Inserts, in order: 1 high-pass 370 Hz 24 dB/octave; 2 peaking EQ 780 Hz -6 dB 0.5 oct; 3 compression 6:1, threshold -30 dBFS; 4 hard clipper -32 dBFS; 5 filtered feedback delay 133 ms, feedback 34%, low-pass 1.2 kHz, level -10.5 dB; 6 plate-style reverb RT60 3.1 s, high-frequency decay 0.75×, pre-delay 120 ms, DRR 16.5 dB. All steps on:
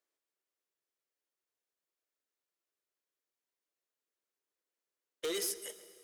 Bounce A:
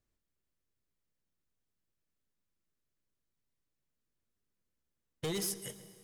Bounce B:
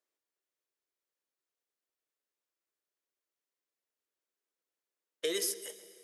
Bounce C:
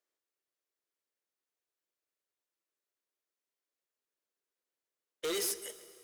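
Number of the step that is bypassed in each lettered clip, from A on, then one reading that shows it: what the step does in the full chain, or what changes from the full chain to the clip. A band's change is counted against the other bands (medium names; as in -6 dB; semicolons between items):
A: 1, 250 Hz band +6.5 dB; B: 4, distortion -11 dB; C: 3, mean gain reduction 4.0 dB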